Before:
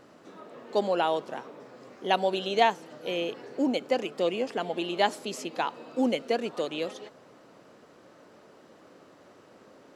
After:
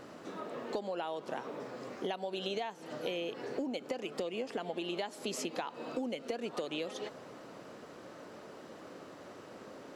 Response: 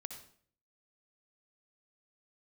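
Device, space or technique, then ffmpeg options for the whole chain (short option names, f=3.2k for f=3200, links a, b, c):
serial compression, leveller first: -af "acompressor=threshold=-29dB:ratio=2.5,acompressor=threshold=-38dB:ratio=10,volume=4.5dB"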